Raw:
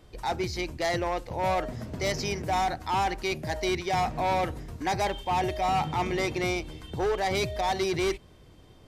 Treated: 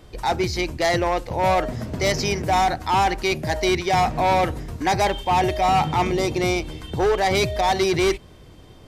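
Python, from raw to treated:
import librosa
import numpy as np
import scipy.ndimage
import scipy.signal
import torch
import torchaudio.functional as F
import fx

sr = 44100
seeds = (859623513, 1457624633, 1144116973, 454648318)

y = fx.peak_eq(x, sr, hz=1800.0, db=fx.line((6.1, -11.5), (6.61, -1.0)), octaves=1.4, at=(6.1, 6.61), fade=0.02)
y = F.gain(torch.from_numpy(y), 7.5).numpy()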